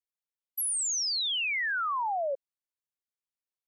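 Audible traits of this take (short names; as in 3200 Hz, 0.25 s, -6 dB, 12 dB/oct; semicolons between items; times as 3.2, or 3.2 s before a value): noise floor -95 dBFS; spectral tilt -4.0 dB/oct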